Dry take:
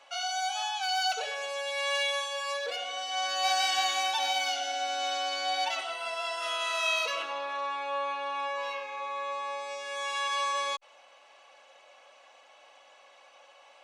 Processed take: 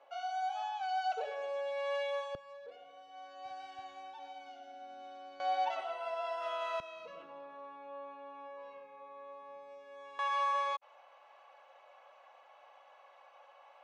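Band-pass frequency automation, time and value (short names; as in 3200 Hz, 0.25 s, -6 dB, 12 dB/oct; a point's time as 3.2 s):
band-pass, Q 1.1
500 Hz
from 2.35 s 120 Hz
from 5.4 s 640 Hz
from 6.8 s 160 Hz
from 10.19 s 910 Hz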